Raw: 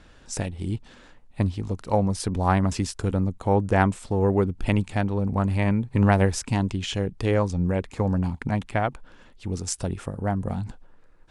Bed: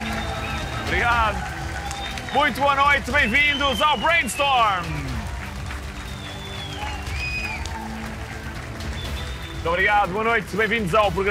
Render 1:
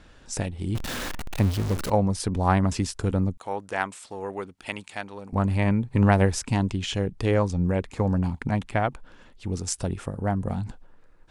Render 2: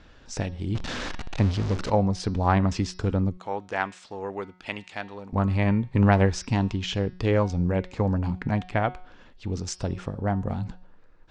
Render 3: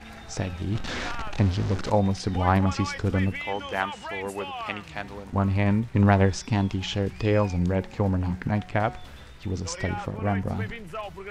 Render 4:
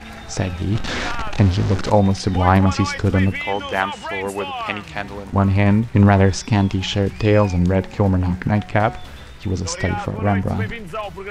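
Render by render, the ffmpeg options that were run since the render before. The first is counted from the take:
-filter_complex "[0:a]asettb=1/sr,asplit=3[s0][s1][s2];[s0]atrim=end=0.754[s3];[s1]atrim=start=0.75:end=1.9,asetpts=PTS-STARTPTS,afade=t=in:d=0.004:c=qsin,afade=t=out:st=1.146:d=0.004:c=qsin,aeval=exprs='val(0)+0.5*0.0501*sgn(val(0))':c=same[s4];[s2]atrim=start=1.896[s5];[s3][s4]acrossfade=d=0.004:c1=hsin:c2=qsin[s6];[s6][s5]acrossfade=d=0.004:c1=qsin:c2=hsin,asettb=1/sr,asplit=3[s7][s8][s9];[s7]atrim=end=3.374[s10];[s8]atrim=start=3.37:end=5.33,asetpts=PTS-STARTPTS,afade=t=in:d=0.004:c=qsin,afade=t=out:st=1.956:d=0.004:c=qsin,highpass=f=1400:p=1[s11];[s9]atrim=start=5.326[s12];[s10][s11]acrossfade=d=0.004:c1=hsin:c2=qsin[s13];[s13][s12]acrossfade=d=0.004:c1=qsin:c2=hsin"
-af "lowpass=f=6200:w=0.5412,lowpass=f=6200:w=1.3066,bandreject=f=182.8:t=h:w=4,bandreject=f=365.6:t=h:w=4,bandreject=f=548.4:t=h:w=4,bandreject=f=731.2:t=h:w=4,bandreject=f=914:t=h:w=4,bandreject=f=1096.8:t=h:w=4,bandreject=f=1279.6:t=h:w=4,bandreject=f=1462.4:t=h:w=4,bandreject=f=1645.2:t=h:w=4,bandreject=f=1828:t=h:w=4,bandreject=f=2010.8:t=h:w=4,bandreject=f=2193.6:t=h:w=4,bandreject=f=2376.4:t=h:w=4,bandreject=f=2559.2:t=h:w=4,bandreject=f=2742:t=h:w=4,bandreject=f=2924.8:t=h:w=4,bandreject=f=3107.6:t=h:w=4,bandreject=f=3290.4:t=h:w=4,bandreject=f=3473.2:t=h:w=4,bandreject=f=3656:t=h:w=4,bandreject=f=3838.8:t=h:w=4,bandreject=f=4021.6:t=h:w=4,bandreject=f=4204.4:t=h:w=4,bandreject=f=4387.2:t=h:w=4,bandreject=f=4570:t=h:w=4,bandreject=f=4752.8:t=h:w=4,bandreject=f=4935.6:t=h:w=4,bandreject=f=5118.4:t=h:w=4,bandreject=f=5301.2:t=h:w=4,bandreject=f=5484:t=h:w=4,bandreject=f=5666.8:t=h:w=4,bandreject=f=5849.6:t=h:w=4"
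-filter_complex "[1:a]volume=0.141[s0];[0:a][s0]amix=inputs=2:normalize=0"
-af "volume=2.37,alimiter=limit=0.794:level=0:latency=1"

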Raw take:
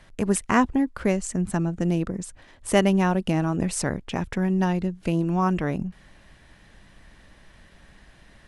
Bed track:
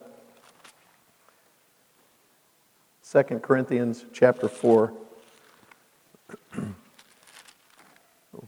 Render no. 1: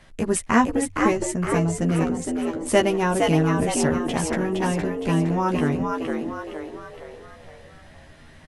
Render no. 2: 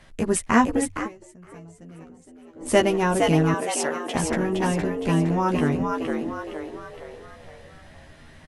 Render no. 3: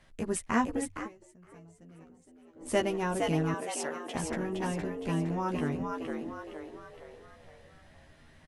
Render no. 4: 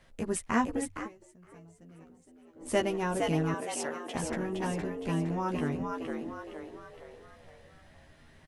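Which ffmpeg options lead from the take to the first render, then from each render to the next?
-filter_complex "[0:a]asplit=2[s0][s1];[s1]adelay=13,volume=0.668[s2];[s0][s2]amix=inputs=2:normalize=0,asplit=2[s3][s4];[s4]asplit=6[s5][s6][s7][s8][s9][s10];[s5]adelay=464,afreqshift=79,volume=0.631[s11];[s6]adelay=928,afreqshift=158,volume=0.285[s12];[s7]adelay=1392,afreqshift=237,volume=0.127[s13];[s8]adelay=1856,afreqshift=316,volume=0.0575[s14];[s9]adelay=2320,afreqshift=395,volume=0.026[s15];[s10]adelay=2784,afreqshift=474,volume=0.0116[s16];[s11][s12][s13][s14][s15][s16]amix=inputs=6:normalize=0[s17];[s3][s17]amix=inputs=2:normalize=0"
-filter_complex "[0:a]asettb=1/sr,asplit=3[s0][s1][s2];[s0]atrim=end=3.544[s3];[s1]atrim=start=3.54:end=4.15,asetpts=PTS-STARTPTS,afade=t=in:d=0.004:c=qsin,afade=t=out:st=0.606:d=0.004:c=qsin,highpass=470[s4];[s2]atrim=start=4.146[s5];[s3][s4]acrossfade=d=0.004:c1=hsin:c2=qsin[s6];[s6][s5]acrossfade=d=0.004:c1=qsin:c2=hsin,asplit=3[s7][s8][s9];[s7]atrim=end=1.09,asetpts=PTS-STARTPTS,afade=t=out:st=0.91:d=0.18:silence=0.0794328[s10];[s8]atrim=start=1.09:end=2.55,asetpts=PTS-STARTPTS,volume=0.0794[s11];[s9]atrim=start=2.55,asetpts=PTS-STARTPTS,afade=t=in:d=0.18:silence=0.0794328[s12];[s10][s11][s12]concat=n=3:v=0:a=1"
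-af "volume=0.335"
-filter_complex "[1:a]volume=0.0398[s0];[0:a][s0]amix=inputs=2:normalize=0"

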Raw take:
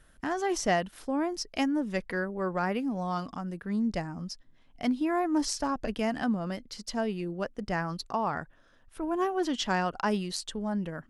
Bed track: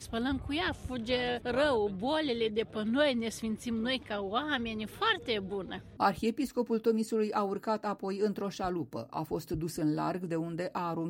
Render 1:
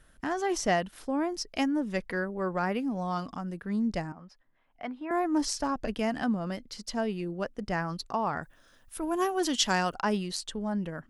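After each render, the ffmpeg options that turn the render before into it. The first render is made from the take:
-filter_complex "[0:a]asettb=1/sr,asplit=3[s0][s1][s2];[s0]atrim=end=4.124[s3];[s1]atrim=start=4.12:end=5.11,asetpts=PTS-STARTPTS,afade=t=in:d=0.004:c=qsin,afade=t=out:st=0.986:d=0.004:c=qsin,acrossover=split=510 2500:gain=0.224 1 0.0708[s4][s5][s6];[s4][s5][s6]amix=inputs=3:normalize=0[s7];[s2]atrim=start=5.106[s8];[s3][s7]acrossfade=d=0.004:c1=hsin:c2=qsin[s9];[s9][s8]acrossfade=d=0.004:c1=qsin:c2=hsin,asplit=3[s10][s11][s12];[s10]afade=t=out:st=8.42:d=0.02[s13];[s11]aemphasis=mode=production:type=75kf,afade=t=in:st=8.42:d=0.02,afade=t=out:st=9.94:d=0.02[s14];[s12]afade=t=in:st=9.94:d=0.02[s15];[s13][s14][s15]amix=inputs=3:normalize=0"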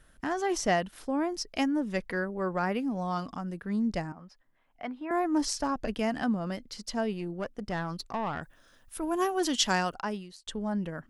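-filter_complex "[0:a]asettb=1/sr,asplit=3[s0][s1][s2];[s0]atrim=end=7.134[s3];[s1]atrim=start=7.13:end=8.42,asetpts=PTS-STARTPTS,afade=t=in:d=0.004:c=qsin,afade=t=out:st=1.286:d=0.004:c=qsin,aeval=exprs='(tanh(17.8*val(0)+0.35)-tanh(0.35))/17.8':c=same[s4];[s2]atrim=start=8.416[s5];[s3][s4]acrossfade=d=0.004:c1=hsin:c2=qsin[s6];[s6][s5]acrossfade=d=0.004:c1=qsin:c2=hsin,asplit=2[s7][s8];[s7]atrim=end=10.47,asetpts=PTS-STARTPTS,afade=t=out:st=9.75:d=0.72[s9];[s8]atrim=start=10.47,asetpts=PTS-STARTPTS,afade=t=in:d=0.004:c=hsin[s10];[s9][s10]concat=n=2:v=0:a=1"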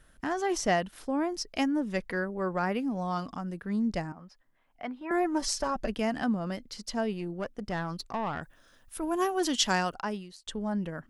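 -filter_complex "[0:a]asettb=1/sr,asplit=3[s0][s1][s2];[s0]atrim=end=5.004[s3];[s1]atrim=start=5:end=5.86,asetpts=PTS-STARTPTS,afade=t=in:d=0.004:c=qsin,afade=t=out:st=0.856:d=0.004:c=qsin,aecho=1:1:5.2:0.65,atrim=end_sample=37926[s4];[s2]atrim=start=5.856[s5];[s3][s4]acrossfade=d=0.004:c1=hsin:c2=qsin[s6];[s6][s5]acrossfade=d=0.004:c1=qsin:c2=hsin"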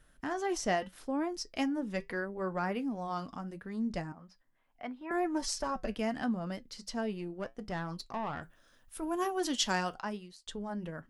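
-af "flanger=delay=6.5:depth=2.7:regen=-71:speed=0.76:shape=triangular"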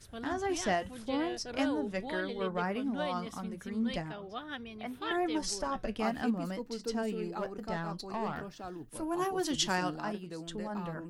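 -filter_complex "[1:a]volume=0.335[s0];[0:a][s0]amix=inputs=2:normalize=0"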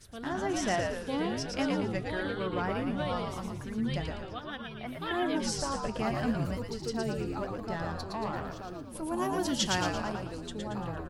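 -filter_complex "[0:a]asplit=7[s0][s1][s2][s3][s4][s5][s6];[s1]adelay=114,afreqshift=-82,volume=0.668[s7];[s2]adelay=228,afreqshift=-164,volume=0.309[s8];[s3]adelay=342,afreqshift=-246,volume=0.141[s9];[s4]adelay=456,afreqshift=-328,volume=0.0653[s10];[s5]adelay=570,afreqshift=-410,volume=0.0299[s11];[s6]adelay=684,afreqshift=-492,volume=0.0138[s12];[s0][s7][s8][s9][s10][s11][s12]amix=inputs=7:normalize=0"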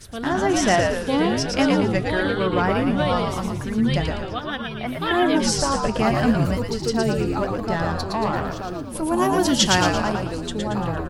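-af "volume=3.76"

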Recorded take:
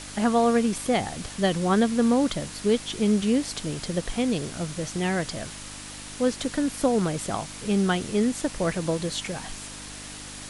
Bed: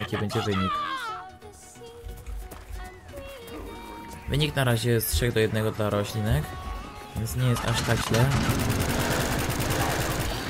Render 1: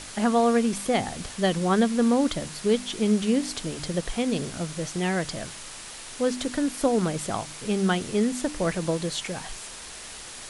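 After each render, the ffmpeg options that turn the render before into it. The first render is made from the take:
-af "bandreject=f=50:t=h:w=4,bandreject=f=100:t=h:w=4,bandreject=f=150:t=h:w=4,bandreject=f=200:t=h:w=4,bandreject=f=250:t=h:w=4,bandreject=f=300:t=h:w=4"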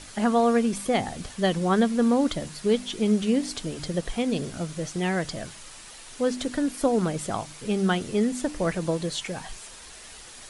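-af "afftdn=nr=6:nf=-41"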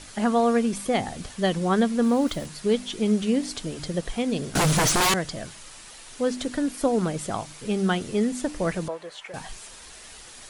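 -filter_complex "[0:a]asettb=1/sr,asplit=3[s0][s1][s2];[s0]atrim=end=2.034[s3];[s1]atrim=start=2.03:end=2.46,asetpts=PTS-STARTPTS,afade=t=in:d=0.004:c=qsin,afade=t=out:st=0.426:d=0.004:c=qsin,aeval=exprs='val(0)*gte(abs(val(0)),0.00944)':c=same[s4];[s2]atrim=start=2.456[s5];[s3][s4]acrossfade=d=0.004:c1=hsin:c2=qsin[s6];[s6][s5]acrossfade=d=0.004:c1=qsin:c2=hsin,asettb=1/sr,asplit=3[s7][s8][s9];[s7]atrim=end=4.554[s10];[s8]atrim=start=4.55:end=5.14,asetpts=PTS-STARTPTS,afade=t=in:d=0.004:c=qsin,afade=t=out:st=0.586:d=0.004:c=qsin,aeval=exprs='0.141*sin(PI/2*6.31*val(0)/0.141)':c=same[s11];[s9]atrim=start=5.136[s12];[s10][s11]acrossfade=d=0.004:c1=hsin:c2=qsin[s13];[s13][s12]acrossfade=d=0.004:c1=qsin:c2=hsin,asettb=1/sr,asplit=3[s14][s15][s16];[s14]atrim=end=8.884[s17];[s15]atrim=start=8.88:end=9.34,asetpts=PTS-STARTPTS,afade=t=in:d=0.004:c=qsin,afade=t=out:st=0.456:d=0.004:c=qsin,acrossover=split=500 2400:gain=0.0708 1 0.178[s18][s19][s20];[s18][s19][s20]amix=inputs=3:normalize=0[s21];[s16]atrim=start=9.336[s22];[s17][s21]acrossfade=d=0.004:c1=hsin:c2=qsin[s23];[s23][s22]acrossfade=d=0.004:c1=qsin:c2=hsin"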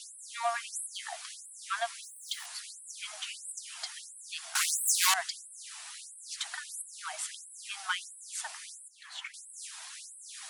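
-filter_complex "[0:a]acrossover=split=460|5800[s0][s1][s2];[s1]asoftclip=type=tanh:threshold=0.0841[s3];[s0][s3][s2]amix=inputs=3:normalize=0,afftfilt=real='re*gte(b*sr/1024,610*pow(7900/610,0.5+0.5*sin(2*PI*1.5*pts/sr)))':imag='im*gte(b*sr/1024,610*pow(7900/610,0.5+0.5*sin(2*PI*1.5*pts/sr)))':win_size=1024:overlap=0.75"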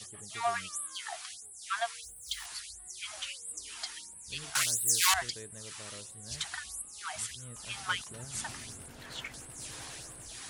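-filter_complex "[1:a]volume=0.0562[s0];[0:a][s0]amix=inputs=2:normalize=0"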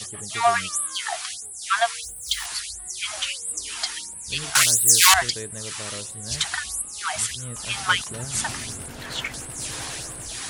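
-af "volume=3.98,alimiter=limit=0.794:level=0:latency=1"

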